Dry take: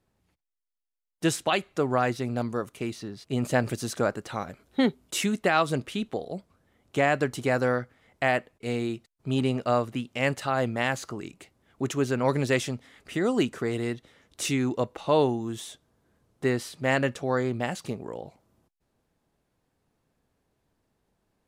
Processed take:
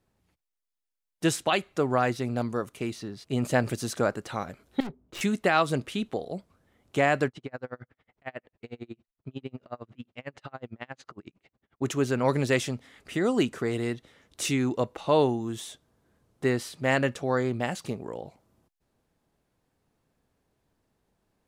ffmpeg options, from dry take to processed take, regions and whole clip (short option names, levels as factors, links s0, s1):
-filter_complex "[0:a]asettb=1/sr,asplit=3[s0][s1][s2];[s0]atrim=end=4.804[s3];[s1]atrim=start=4.8:end=5.21,asetpts=PTS-STARTPTS,afade=t=in:d=0.004:c=qsin,afade=t=out:st=0.406:d=0.004:c=qsin,adynamicsmooth=sensitivity=4.5:basefreq=750,aeval=exprs='(tanh(50.1*val(0)+0.35)-tanh(0.35))/50.1':c=same[s4];[s2]atrim=start=5.206[s5];[s3][s4]acrossfade=d=0.004:c1=hsin:c2=qsin[s6];[s6][s5]acrossfade=d=0.004:c1=qsin:c2=hsin,asettb=1/sr,asplit=3[s7][s8][s9];[s7]atrim=end=7.284[s10];[s8]atrim=start=7.28:end=11.82,asetpts=PTS-STARTPTS,afade=t=in:d=0.004:c=qsin,afade=t=out:st=4.536:d=0.004:c=qsin,acompressor=threshold=0.0178:ratio=2:attack=3.2:release=140:knee=1:detection=peak,lowpass=3700,aeval=exprs='val(0)*pow(10,-35*(0.5-0.5*cos(2*PI*11*n/s))/20)':c=same[s11];[s9]atrim=start=11.816[s12];[s10][s11]acrossfade=d=0.004:c1=hsin:c2=qsin[s13];[s13][s12]acrossfade=d=0.004:c1=qsin:c2=hsin"